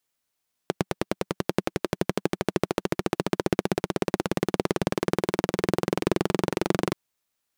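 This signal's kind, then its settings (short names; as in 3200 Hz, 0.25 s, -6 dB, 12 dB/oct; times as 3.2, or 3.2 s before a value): single-cylinder engine model, changing speed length 6.23 s, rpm 1100, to 2800, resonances 190/340 Hz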